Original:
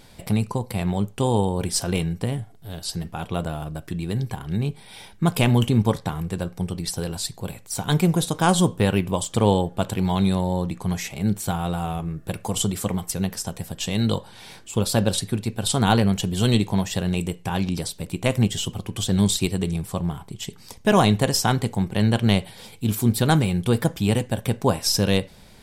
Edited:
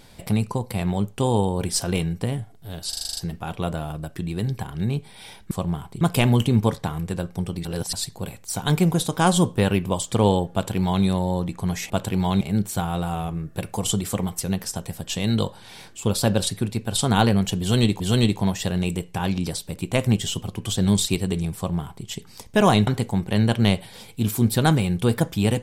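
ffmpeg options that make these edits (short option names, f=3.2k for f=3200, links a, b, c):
-filter_complex "[0:a]asplit=16[a][b][c][d][e][f][g][h][i][j][k][l][m][n][o][p];[a]atrim=end=2.932[q];[b]atrim=start=2.888:end=2.932[r];[c]atrim=start=2.888:end=2.932[s];[d]atrim=start=2.888:end=2.932[t];[e]atrim=start=2.888:end=2.932[u];[f]atrim=start=2.888:end=2.932[v];[g]atrim=start=2.888:end=2.932[w];[h]atrim=start=2.888:end=5.232[x];[i]atrim=start=19.868:end=20.372[y];[j]atrim=start=5.228:end=6.872[z];[k]atrim=start=6.868:end=7.152,asetpts=PTS-STARTPTS,areverse[aa];[l]atrim=start=7.148:end=11.122[ab];[m]atrim=start=9.748:end=10.262[ac];[n]atrim=start=11.118:end=16.712[ad];[o]atrim=start=16.308:end=21.182[ae];[p]atrim=start=21.508[af];[q][r]acrossfade=d=0.004:c1=hsin:c2=hsin[ag];[ag][s]acrossfade=d=0.004:c1=hsin:c2=hsin[ah];[ah][t]acrossfade=d=0.004:c1=hsin:c2=hsin[ai];[ai][u]acrossfade=d=0.004:c1=hsin:c2=hsin[aj];[aj][v]acrossfade=d=0.004:c1=hsin:c2=hsin[ak];[ak][w]acrossfade=d=0.004:c1=hsin:c2=hsin[al];[al][x]acrossfade=d=0.004:c1=hsin:c2=hsin[am];[am][y]acrossfade=d=0.004:c1=hsin:c2=hsin[an];[an][z]acrossfade=d=0.004:c1=hsin:c2=hsin[ao];[ao][aa]acrossfade=d=0.004:c1=hsin:c2=hsin[ap];[ap][ab]acrossfade=d=0.004:c1=hsin:c2=hsin[aq];[aq][ac]acrossfade=d=0.004:c1=hsin:c2=hsin[ar];[ar][ad]acrossfade=d=0.004:c1=hsin:c2=hsin[as];[as][ae]acrossfade=d=0.004:c1=hsin:c2=hsin[at];[at][af]acrossfade=d=0.004:c1=hsin:c2=hsin"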